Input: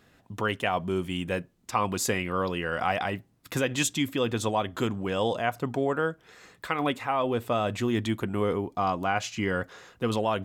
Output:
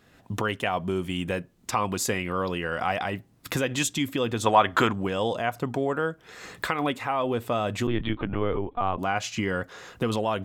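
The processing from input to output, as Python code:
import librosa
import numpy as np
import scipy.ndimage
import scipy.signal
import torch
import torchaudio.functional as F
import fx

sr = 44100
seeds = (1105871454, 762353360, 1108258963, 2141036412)

y = fx.recorder_agc(x, sr, target_db=-18.0, rise_db_per_s=25.0, max_gain_db=30)
y = fx.peak_eq(y, sr, hz=1400.0, db=12.5, octaves=2.5, at=(4.46, 4.93))
y = fx.lpc_vocoder(y, sr, seeds[0], excitation='pitch_kept', order=16, at=(7.87, 8.99))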